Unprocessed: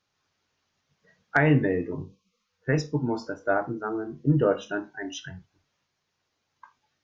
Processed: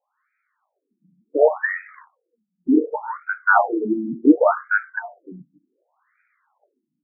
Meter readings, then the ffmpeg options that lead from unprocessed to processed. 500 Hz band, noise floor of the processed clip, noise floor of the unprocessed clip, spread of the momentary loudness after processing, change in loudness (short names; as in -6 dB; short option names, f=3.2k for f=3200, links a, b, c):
+6.0 dB, -79 dBFS, -78 dBFS, 15 LU, +6.5 dB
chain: -af "acrusher=bits=5:mode=log:mix=0:aa=0.000001,dynaudnorm=f=260:g=7:m=10.5dB,afftfilt=real='re*between(b*sr/1024,220*pow(1800/220,0.5+0.5*sin(2*PI*0.68*pts/sr))/1.41,220*pow(1800/220,0.5+0.5*sin(2*PI*0.68*pts/sr))*1.41)':imag='im*between(b*sr/1024,220*pow(1800/220,0.5+0.5*sin(2*PI*0.68*pts/sr))/1.41,220*pow(1800/220,0.5+0.5*sin(2*PI*0.68*pts/sr))*1.41)':win_size=1024:overlap=0.75,volume=8dB"